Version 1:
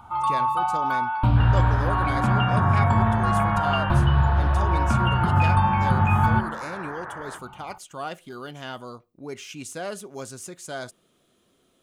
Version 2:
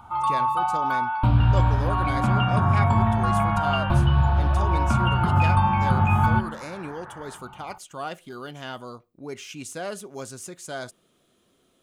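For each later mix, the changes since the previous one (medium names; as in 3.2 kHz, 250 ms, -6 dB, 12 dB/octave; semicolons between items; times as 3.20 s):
second sound -7.5 dB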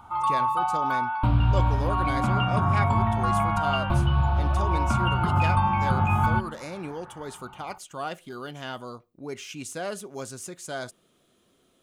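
first sound: send -6.5 dB; second sound -8.5 dB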